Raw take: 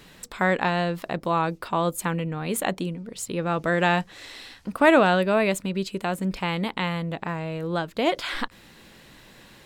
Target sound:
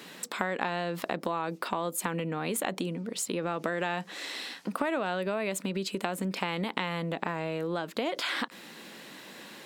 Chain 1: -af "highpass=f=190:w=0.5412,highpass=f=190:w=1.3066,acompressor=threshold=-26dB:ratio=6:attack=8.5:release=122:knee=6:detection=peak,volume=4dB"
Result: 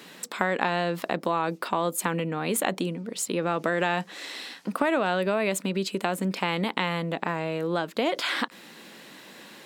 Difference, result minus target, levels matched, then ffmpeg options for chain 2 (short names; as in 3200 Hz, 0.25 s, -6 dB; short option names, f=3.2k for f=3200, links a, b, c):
compressor: peak gain reduction -6 dB
-af "highpass=f=190:w=0.5412,highpass=f=190:w=1.3066,acompressor=threshold=-33dB:ratio=6:attack=8.5:release=122:knee=6:detection=peak,volume=4dB"